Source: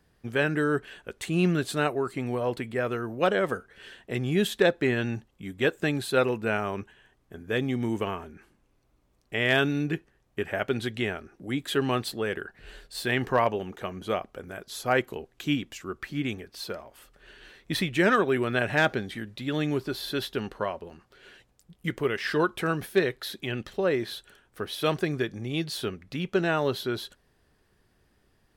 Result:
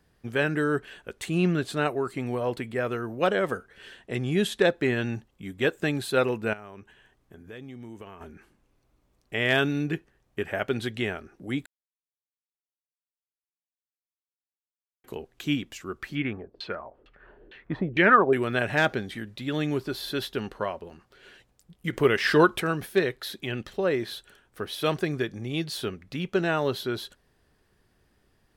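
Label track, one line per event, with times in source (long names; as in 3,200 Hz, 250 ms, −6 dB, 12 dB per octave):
1.380000	1.860000	high-shelf EQ 6,700 Hz −8 dB
3.970000	4.640000	linear-phase brick-wall low-pass 12,000 Hz
6.530000	8.210000	downward compressor 2.5 to 1, threshold −46 dBFS
11.660000	15.040000	silence
16.150000	18.330000	auto-filter low-pass saw down 2.2 Hz 340–3,300 Hz
21.930000	22.600000	clip gain +6 dB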